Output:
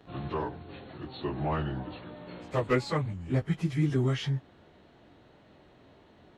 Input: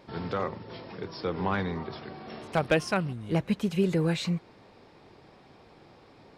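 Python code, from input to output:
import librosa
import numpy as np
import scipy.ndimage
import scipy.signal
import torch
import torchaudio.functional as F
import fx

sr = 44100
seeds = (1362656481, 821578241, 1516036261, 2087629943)

y = fx.pitch_bins(x, sr, semitones=-4.0)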